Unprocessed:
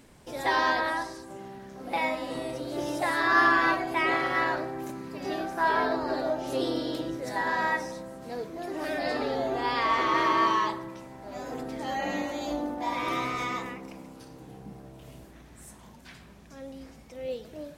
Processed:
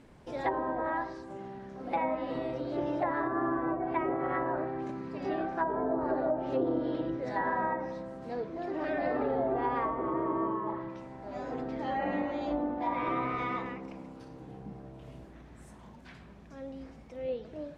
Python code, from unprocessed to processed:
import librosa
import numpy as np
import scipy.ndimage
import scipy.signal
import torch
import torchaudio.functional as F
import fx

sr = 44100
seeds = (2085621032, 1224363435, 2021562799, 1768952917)

y = fx.lowpass(x, sr, hz=1800.0, slope=6)
y = fx.env_lowpass_down(y, sr, base_hz=610.0, full_db=-23.0)